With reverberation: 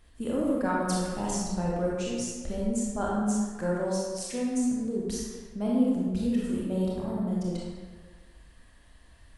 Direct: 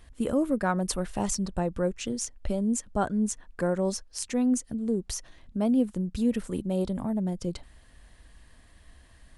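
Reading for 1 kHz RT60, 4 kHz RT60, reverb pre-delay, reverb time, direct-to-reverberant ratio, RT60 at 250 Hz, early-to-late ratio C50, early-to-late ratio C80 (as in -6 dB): 1.5 s, 1.0 s, 25 ms, 1.5 s, -5.0 dB, 1.6 s, -2.0 dB, 0.5 dB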